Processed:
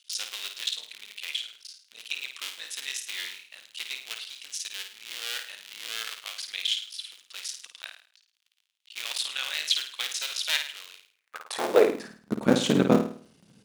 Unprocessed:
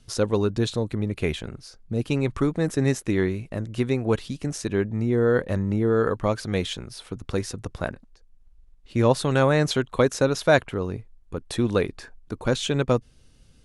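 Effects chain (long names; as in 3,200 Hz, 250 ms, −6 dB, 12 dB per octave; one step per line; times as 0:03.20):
sub-harmonics by changed cycles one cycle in 3, muted
flutter between parallel walls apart 9.1 metres, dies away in 0.46 s
high-pass filter sweep 3,100 Hz → 200 Hz, 0:11.11–0:12.08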